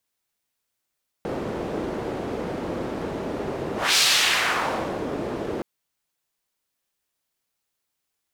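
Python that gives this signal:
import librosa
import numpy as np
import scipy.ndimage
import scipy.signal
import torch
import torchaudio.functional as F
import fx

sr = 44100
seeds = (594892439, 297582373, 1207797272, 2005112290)

y = fx.whoosh(sr, seeds[0], length_s=4.37, peak_s=2.72, rise_s=0.24, fall_s=1.15, ends_hz=380.0, peak_hz=4300.0, q=1.2, swell_db=11.0)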